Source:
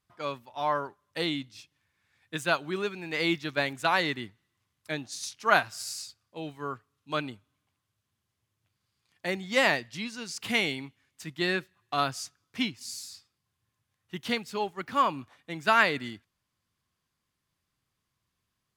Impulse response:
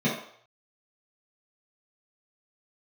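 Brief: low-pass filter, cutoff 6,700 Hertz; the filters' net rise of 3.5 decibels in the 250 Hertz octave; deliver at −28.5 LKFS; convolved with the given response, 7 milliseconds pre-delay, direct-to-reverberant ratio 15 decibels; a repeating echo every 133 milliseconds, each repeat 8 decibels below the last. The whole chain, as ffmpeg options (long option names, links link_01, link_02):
-filter_complex "[0:a]lowpass=6700,equalizer=frequency=250:width_type=o:gain=4.5,aecho=1:1:133|266|399|532|665:0.398|0.159|0.0637|0.0255|0.0102,asplit=2[link_01][link_02];[1:a]atrim=start_sample=2205,adelay=7[link_03];[link_02][link_03]afir=irnorm=-1:irlink=0,volume=-27.5dB[link_04];[link_01][link_04]amix=inputs=2:normalize=0"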